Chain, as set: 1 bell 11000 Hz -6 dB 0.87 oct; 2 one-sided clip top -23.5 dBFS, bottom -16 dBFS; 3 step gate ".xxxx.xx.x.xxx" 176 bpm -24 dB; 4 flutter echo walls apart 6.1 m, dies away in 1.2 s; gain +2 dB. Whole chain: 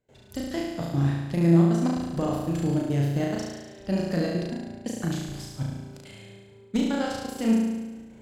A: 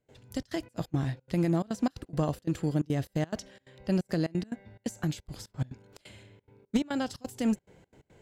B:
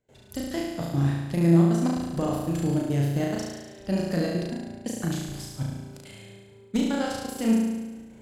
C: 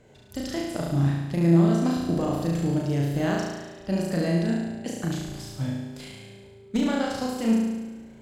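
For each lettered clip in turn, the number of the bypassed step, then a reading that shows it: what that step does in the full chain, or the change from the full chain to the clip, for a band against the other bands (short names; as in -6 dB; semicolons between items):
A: 4, echo-to-direct 3.0 dB to none; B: 1, 8 kHz band +2.5 dB; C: 3, momentary loudness spread change -1 LU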